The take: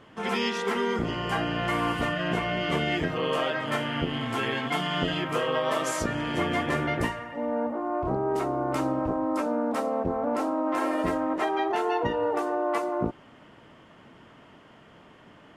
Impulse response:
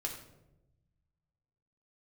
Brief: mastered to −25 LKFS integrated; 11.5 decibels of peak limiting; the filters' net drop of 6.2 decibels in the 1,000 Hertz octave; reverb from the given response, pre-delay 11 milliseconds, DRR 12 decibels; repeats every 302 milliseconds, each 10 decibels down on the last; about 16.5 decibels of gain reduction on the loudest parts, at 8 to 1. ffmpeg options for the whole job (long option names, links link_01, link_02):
-filter_complex "[0:a]equalizer=frequency=1000:width_type=o:gain=-8.5,acompressor=threshold=-41dB:ratio=8,alimiter=level_in=17.5dB:limit=-24dB:level=0:latency=1,volume=-17.5dB,aecho=1:1:302|604|906|1208:0.316|0.101|0.0324|0.0104,asplit=2[link_01][link_02];[1:a]atrim=start_sample=2205,adelay=11[link_03];[link_02][link_03]afir=irnorm=-1:irlink=0,volume=-13dB[link_04];[link_01][link_04]amix=inputs=2:normalize=0,volume=24.5dB"